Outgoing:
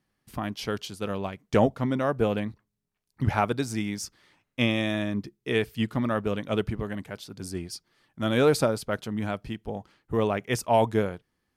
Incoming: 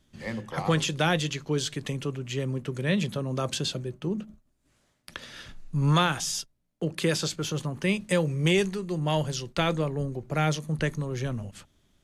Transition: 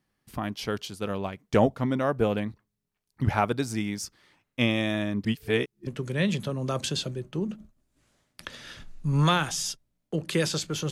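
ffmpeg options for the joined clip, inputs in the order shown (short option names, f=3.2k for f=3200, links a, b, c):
-filter_complex "[0:a]apad=whole_dur=10.91,atrim=end=10.91,asplit=2[a][b];[a]atrim=end=5.252[c];[b]atrim=start=5.248:end=5.872,asetpts=PTS-STARTPTS,areverse[d];[1:a]atrim=start=2.558:end=7.6[e];[c][d]acrossfade=d=0.004:c1=hsin:c2=hsin[f];[f][e]acrossfade=d=0.004:c1=hsin:c2=hsin"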